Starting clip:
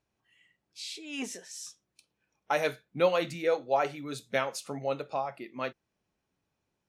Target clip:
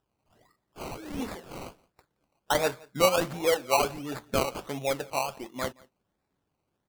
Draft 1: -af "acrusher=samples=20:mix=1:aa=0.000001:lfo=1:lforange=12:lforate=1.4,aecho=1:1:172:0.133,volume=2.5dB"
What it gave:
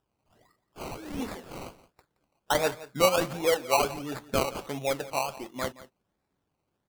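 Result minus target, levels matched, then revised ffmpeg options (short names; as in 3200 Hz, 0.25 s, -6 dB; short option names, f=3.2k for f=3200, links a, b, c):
echo-to-direct +7.5 dB
-af "acrusher=samples=20:mix=1:aa=0.000001:lfo=1:lforange=12:lforate=1.4,aecho=1:1:172:0.0562,volume=2.5dB"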